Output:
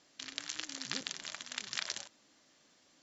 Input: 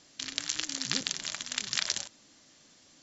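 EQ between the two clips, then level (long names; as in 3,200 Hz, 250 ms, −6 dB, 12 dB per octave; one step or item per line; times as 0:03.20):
low-shelf EQ 200 Hz −11 dB
high-shelf EQ 3,400 Hz −8 dB
−3.0 dB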